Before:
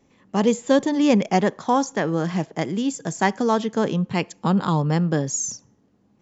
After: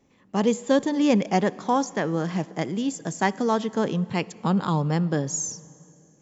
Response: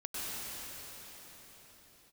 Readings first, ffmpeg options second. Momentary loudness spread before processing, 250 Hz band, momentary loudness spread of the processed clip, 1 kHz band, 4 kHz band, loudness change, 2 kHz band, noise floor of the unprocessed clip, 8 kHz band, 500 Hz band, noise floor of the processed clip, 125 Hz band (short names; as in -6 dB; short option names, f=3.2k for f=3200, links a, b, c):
7 LU, -2.5 dB, 7 LU, -2.5 dB, -2.5 dB, -2.5 dB, -2.5 dB, -62 dBFS, n/a, -2.5 dB, -59 dBFS, -3.0 dB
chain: -filter_complex "[0:a]asplit=2[a][b];[1:a]atrim=start_sample=2205,asetrate=74970,aresample=44100[c];[b][c]afir=irnorm=-1:irlink=0,volume=-20.5dB[d];[a][d]amix=inputs=2:normalize=0,volume=-3dB"